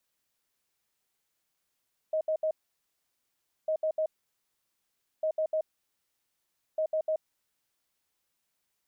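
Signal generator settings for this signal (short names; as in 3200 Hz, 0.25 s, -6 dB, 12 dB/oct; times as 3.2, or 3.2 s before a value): beep pattern sine 628 Hz, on 0.08 s, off 0.07 s, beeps 3, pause 1.17 s, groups 4, -25 dBFS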